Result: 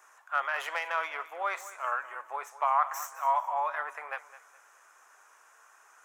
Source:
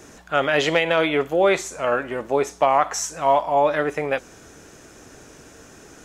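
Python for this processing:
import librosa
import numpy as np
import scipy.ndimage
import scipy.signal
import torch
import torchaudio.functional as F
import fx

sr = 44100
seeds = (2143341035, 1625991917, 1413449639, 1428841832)

y = fx.tracing_dist(x, sr, depth_ms=0.041)
y = fx.ladder_highpass(y, sr, hz=910.0, resonance_pct=50)
y = fx.peak_eq(y, sr, hz=4200.0, db=-12.0, octaves=1.3)
y = fx.echo_feedback(y, sr, ms=210, feedback_pct=33, wet_db=-16.0)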